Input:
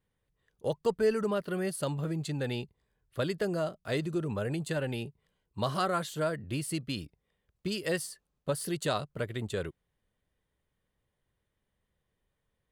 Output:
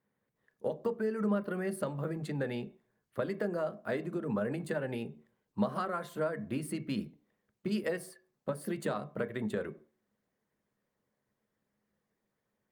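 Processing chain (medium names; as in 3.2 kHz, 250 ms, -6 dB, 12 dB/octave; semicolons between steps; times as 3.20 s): high-pass 180 Hz 12 dB/octave; harmonic-percussive split percussive +4 dB; high-order bell 5.8 kHz -10.5 dB 2.6 oct; compression 6:1, threshold -31 dBFS, peak gain reduction 12 dB; on a send at -10 dB: reverberation RT60 0.50 s, pre-delay 3 ms; on the sum: Opus 48 kbps 48 kHz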